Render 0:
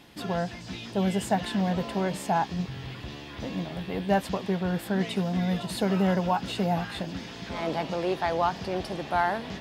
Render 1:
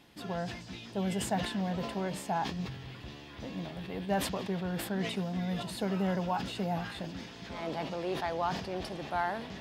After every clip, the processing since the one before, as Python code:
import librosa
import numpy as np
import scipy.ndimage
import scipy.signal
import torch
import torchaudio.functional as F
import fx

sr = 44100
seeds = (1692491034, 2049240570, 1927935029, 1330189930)

y = fx.sustainer(x, sr, db_per_s=66.0)
y = y * librosa.db_to_amplitude(-7.0)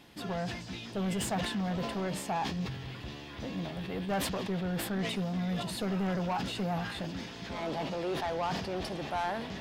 y = 10.0 ** (-30.5 / 20.0) * np.tanh(x / 10.0 ** (-30.5 / 20.0))
y = y * librosa.db_to_amplitude(3.5)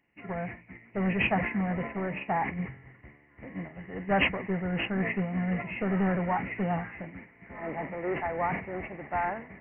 y = fx.freq_compress(x, sr, knee_hz=1700.0, ratio=4.0)
y = fx.upward_expand(y, sr, threshold_db=-46.0, expansion=2.5)
y = y * librosa.db_to_amplitude(7.5)